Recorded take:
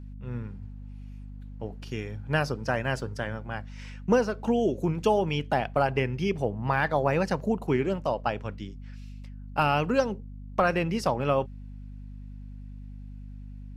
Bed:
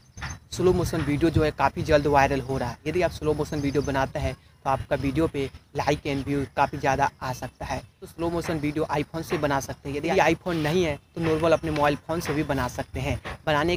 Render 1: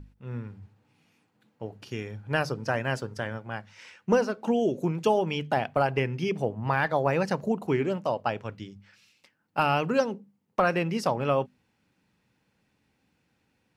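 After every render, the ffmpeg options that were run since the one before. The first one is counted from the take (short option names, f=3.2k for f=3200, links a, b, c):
-af "bandreject=f=50:t=h:w=6,bandreject=f=100:t=h:w=6,bandreject=f=150:t=h:w=6,bandreject=f=200:t=h:w=6,bandreject=f=250:t=h:w=6"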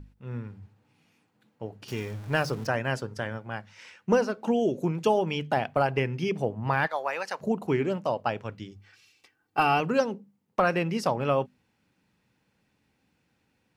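-filter_complex "[0:a]asettb=1/sr,asplit=3[a][b][c];[a]atrim=end=1.884[d];[b]atrim=start=1.88:end=2.67,asetpts=PTS-STARTPTS,afade=t=in:d=0.004:c=qsin,afade=t=out:st=0.786:d=0.004:c=qsin,aeval=exprs='val(0)+0.5*0.0112*sgn(val(0))':c=same[e];[c]atrim=start=2.666[f];[d][e]acrossfade=d=0.004:c1=hsin:c2=qsin[g];[g][f]acrossfade=d=0.004:c1=qsin:c2=hsin,asplit=3[h][i][j];[h]afade=t=out:st=6.86:d=0.02[k];[i]highpass=800,afade=t=in:st=6.86:d=0.02,afade=t=out:st=7.4:d=0.02[l];[j]afade=t=in:st=7.4:d=0.02[m];[k][l][m]amix=inputs=3:normalize=0,asettb=1/sr,asplit=3[n][o][p];[n]atrim=end=8.714[q];[o]atrim=start=8.71:end=9.8,asetpts=PTS-STARTPTS,afade=t=in:d=0.004:c=qsin,afade=t=out:st=1.086:d=0.004:c=qsin,aecho=1:1:2.6:0.68,atrim=end_sample=48069[r];[p]atrim=start=9.796[s];[q][r]acrossfade=d=0.004:c1=hsin:c2=qsin[t];[t][s]acrossfade=d=0.004:c1=qsin:c2=hsin"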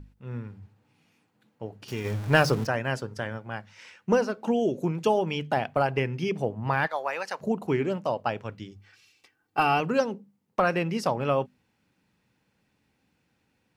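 -filter_complex "[0:a]asplit=3[a][b][c];[a]afade=t=out:st=2.04:d=0.02[d];[b]acontrast=64,afade=t=in:st=2.04:d=0.02,afade=t=out:st=2.64:d=0.02[e];[c]afade=t=in:st=2.64:d=0.02[f];[d][e][f]amix=inputs=3:normalize=0"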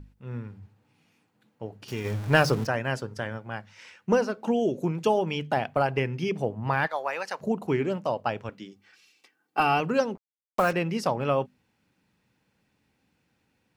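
-filter_complex "[0:a]asettb=1/sr,asplit=3[a][b][c];[a]atrim=end=8.494[d];[b]atrim=start=8.49:end=9.6,asetpts=PTS-STARTPTS,afade=t=in:d=0.004:c=qsin,afade=t=out:st=1.106:d=0.004:c=qsin,highpass=f=170:w=0.5412,highpass=f=170:w=1.3066[e];[c]atrim=start=9.596[f];[d][e]acrossfade=d=0.004:c1=hsin:c2=qsin[g];[g][f]acrossfade=d=0.004:c1=qsin:c2=hsin,asettb=1/sr,asplit=3[h][i][j];[h]atrim=end=10.154[k];[i]atrim=start=10.15:end=10.73,asetpts=PTS-STARTPTS,afade=t=in:d=0.004:c=qsin,afade=t=out:st=0.576:d=0.004:c=qsin,acrusher=bits=5:mix=0:aa=0.5[l];[j]atrim=start=10.726[m];[k][l]acrossfade=d=0.004:c1=hsin:c2=qsin[n];[n][m]acrossfade=d=0.004:c1=qsin:c2=hsin"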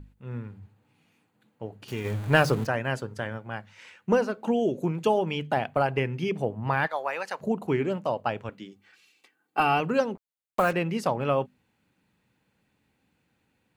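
-af "equalizer=f=5.4k:t=o:w=0.28:g=-8"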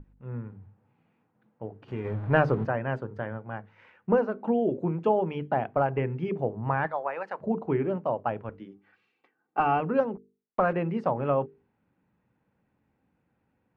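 -af "lowpass=1.4k,bandreject=f=50:t=h:w=6,bandreject=f=100:t=h:w=6,bandreject=f=150:t=h:w=6,bandreject=f=200:t=h:w=6,bandreject=f=250:t=h:w=6,bandreject=f=300:t=h:w=6,bandreject=f=350:t=h:w=6,bandreject=f=400:t=h:w=6,bandreject=f=450:t=h:w=6"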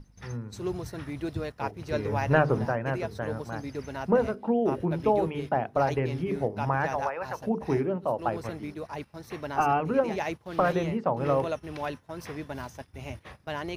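-filter_complex "[1:a]volume=-11.5dB[a];[0:a][a]amix=inputs=2:normalize=0"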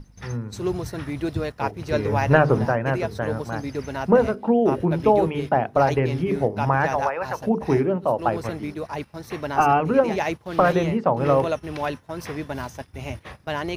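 -af "volume=6.5dB,alimiter=limit=-3dB:level=0:latency=1"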